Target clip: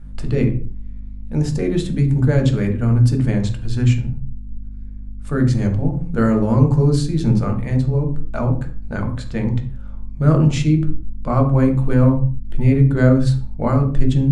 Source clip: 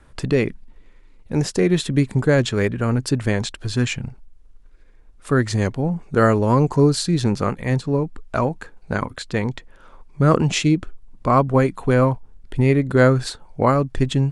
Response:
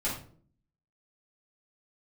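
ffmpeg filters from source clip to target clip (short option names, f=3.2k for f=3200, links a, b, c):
-filter_complex "[0:a]aeval=exprs='val(0)+0.0126*(sin(2*PI*50*n/s)+sin(2*PI*2*50*n/s)/2+sin(2*PI*3*50*n/s)/3+sin(2*PI*4*50*n/s)/4+sin(2*PI*5*50*n/s)/5)':c=same,asplit=2[a][b];[1:a]atrim=start_sample=2205,afade=t=out:st=0.32:d=0.01,atrim=end_sample=14553,lowshelf=f=450:g=12[c];[b][c]afir=irnorm=-1:irlink=0,volume=-9dB[d];[a][d]amix=inputs=2:normalize=0,volume=-9dB"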